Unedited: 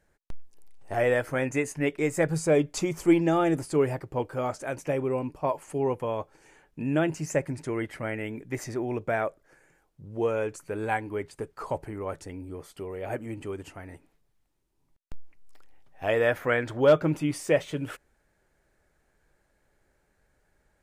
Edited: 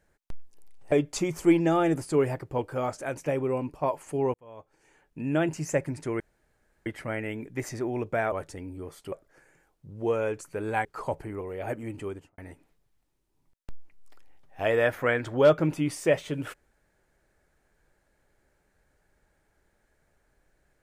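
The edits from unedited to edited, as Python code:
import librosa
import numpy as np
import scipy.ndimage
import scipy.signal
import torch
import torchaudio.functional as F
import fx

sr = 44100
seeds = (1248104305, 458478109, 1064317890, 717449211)

y = fx.studio_fade_out(x, sr, start_s=13.5, length_s=0.31)
y = fx.edit(y, sr, fx.cut(start_s=0.92, length_s=1.61),
    fx.fade_in_span(start_s=5.95, length_s=1.13),
    fx.insert_room_tone(at_s=7.81, length_s=0.66),
    fx.cut(start_s=11.0, length_s=0.48),
    fx.move(start_s=12.04, length_s=0.8, to_s=9.27), tone=tone)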